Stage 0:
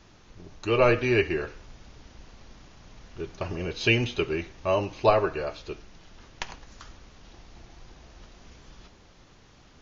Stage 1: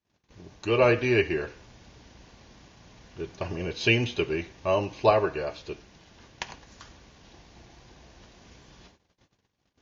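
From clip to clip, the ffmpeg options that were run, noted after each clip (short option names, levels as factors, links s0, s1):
-af "agate=range=0.0251:threshold=0.00282:ratio=16:detection=peak,highpass=63,bandreject=f=1300:w=9.1"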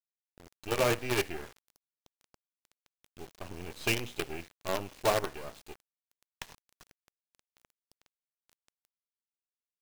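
-af "acrusher=bits=4:dc=4:mix=0:aa=0.000001,volume=0.422"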